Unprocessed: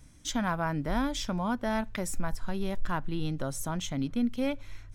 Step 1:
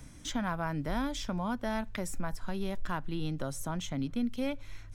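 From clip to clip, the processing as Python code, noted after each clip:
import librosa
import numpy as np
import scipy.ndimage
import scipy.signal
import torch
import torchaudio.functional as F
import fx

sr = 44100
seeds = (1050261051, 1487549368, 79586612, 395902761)

y = fx.band_squash(x, sr, depth_pct=40)
y = y * 10.0 ** (-3.5 / 20.0)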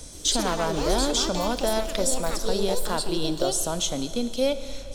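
y = fx.echo_pitch(x, sr, ms=126, semitones=5, count=2, db_per_echo=-6.0)
y = fx.graphic_eq_10(y, sr, hz=(125, 250, 500, 1000, 2000, 4000, 8000), db=(-10, -5, 8, -3, -9, 9, 8))
y = fx.rev_schroeder(y, sr, rt60_s=3.1, comb_ms=27, drr_db=11.0)
y = y * 10.0 ** (8.5 / 20.0)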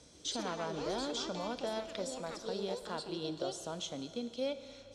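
y = fx.bandpass_edges(x, sr, low_hz=100.0, high_hz=5200.0)
y = fx.comb_fb(y, sr, f0_hz=470.0, decay_s=0.33, harmonics='odd', damping=0.0, mix_pct=60)
y = y * 10.0 ** (-4.5 / 20.0)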